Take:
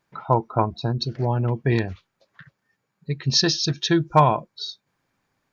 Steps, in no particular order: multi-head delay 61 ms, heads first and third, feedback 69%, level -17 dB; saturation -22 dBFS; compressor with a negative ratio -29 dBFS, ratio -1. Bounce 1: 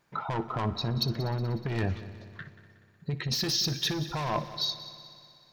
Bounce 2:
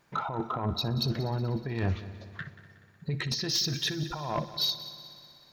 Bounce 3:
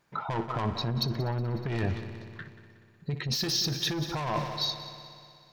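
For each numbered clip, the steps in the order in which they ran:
saturation > compressor with a negative ratio > multi-head delay; compressor with a negative ratio > saturation > multi-head delay; saturation > multi-head delay > compressor with a negative ratio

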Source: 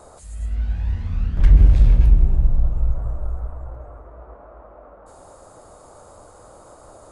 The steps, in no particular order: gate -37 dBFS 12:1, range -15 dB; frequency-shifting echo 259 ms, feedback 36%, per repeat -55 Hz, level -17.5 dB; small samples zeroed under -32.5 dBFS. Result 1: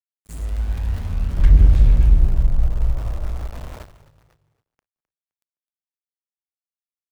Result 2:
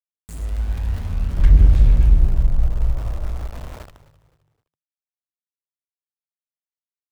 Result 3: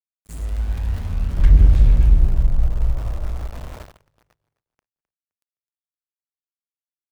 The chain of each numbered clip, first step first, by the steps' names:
small samples zeroed > gate > frequency-shifting echo; gate > small samples zeroed > frequency-shifting echo; small samples zeroed > frequency-shifting echo > gate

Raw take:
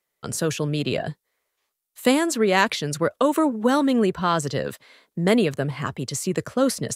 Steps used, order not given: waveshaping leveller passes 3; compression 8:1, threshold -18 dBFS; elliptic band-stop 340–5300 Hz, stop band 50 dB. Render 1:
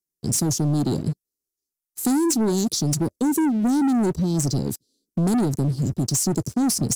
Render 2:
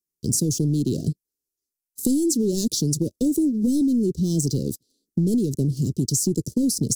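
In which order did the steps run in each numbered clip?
elliptic band-stop > waveshaping leveller > compression; waveshaping leveller > elliptic band-stop > compression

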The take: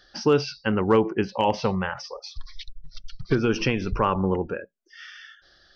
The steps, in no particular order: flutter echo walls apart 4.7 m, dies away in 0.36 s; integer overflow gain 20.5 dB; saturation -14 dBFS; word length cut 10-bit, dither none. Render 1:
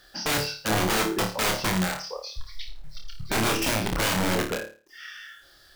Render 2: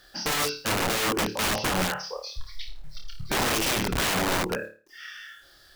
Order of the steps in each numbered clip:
word length cut > saturation > integer overflow > flutter echo; word length cut > flutter echo > saturation > integer overflow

